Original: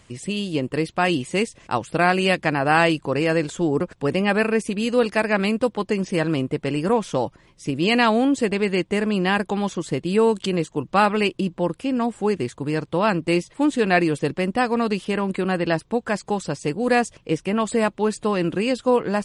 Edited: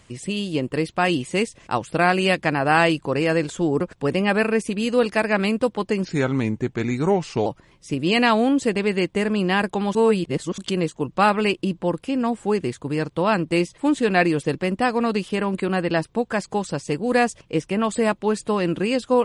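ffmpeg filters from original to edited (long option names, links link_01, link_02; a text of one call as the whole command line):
ffmpeg -i in.wav -filter_complex "[0:a]asplit=5[link_01][link_02][link_03][link_04][link_05];[link_01]atrim=end=6.054[link_06];[link_02]atrim=start=6.05:end=7.22,asetpts=PTS-STARTPTS,asetrate=36603,aresample=44100,atrim=end_sample=62165,asetpts=PTS-STARTPTS[link_07];[link_03]atrim=start=7.216:end=9.712[link_08];[link_04]atrim=start=9.708:end=10.342,asetpts=PTS-STARTPTS,areverse[link_09];[link_05]atrim=start=10.338[link_10];[link_06][link_07]acrossfade=duration=0.004:curve1=hsin:curve2=hsin[link_11];[link_11][link_08]acrossfade=duration=0.004:curve1=hsin:curve2=hsin[link_12];[link_12][link_09]acrossfade=duration=0.004:curve1=hsin:curve2=hsin[link_13];[link_13][link_10]acrossfade=duration=0.004:curve1=hsin:curve2=hsin" out.wav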